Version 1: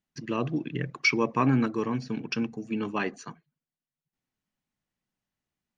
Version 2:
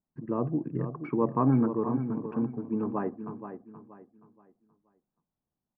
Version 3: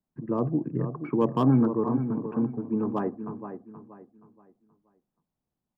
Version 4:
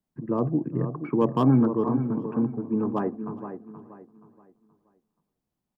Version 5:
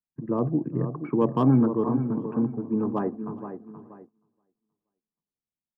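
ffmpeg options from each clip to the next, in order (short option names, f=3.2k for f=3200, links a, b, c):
-af "lowpass=f=1.1k:w=0.5412,lowpass=f=1.1k:w=1.3066,aecho=1:1:476|952|1428|1904:0.316|0.101|0.0324|0.0104"
-filter_complex "[0:a]highshelf=f=2.3k:g=-7,acrossover=split=140|830[a][b][c];[c]volume=32dB,asoftclip=hard,volume=-32dB[d];[a][b][d]amix=inputs=3:normalize=0,volume=3dB"
-af "aecho=1:1:407|814:0.0841|0.0236,volume=1.5dB"
-af "agate=range=-18dB:threshold=-48dB:ratio=16:detection=peak,highshelf=f=2.8k:g=-7.5"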